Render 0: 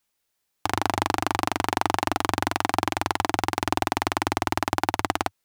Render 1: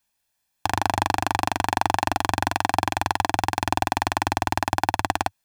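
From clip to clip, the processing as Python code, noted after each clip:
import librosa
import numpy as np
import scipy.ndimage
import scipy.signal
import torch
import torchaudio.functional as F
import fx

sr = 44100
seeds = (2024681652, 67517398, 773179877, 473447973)

y = x + 0.51 * np.pad(x, (int(1.2 * sr / 1000.0), 0))[:len(x)]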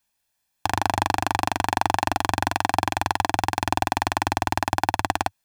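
y = x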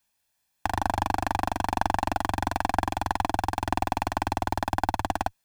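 y = fx.diode_clip(x, sr, knee_db=-17.5)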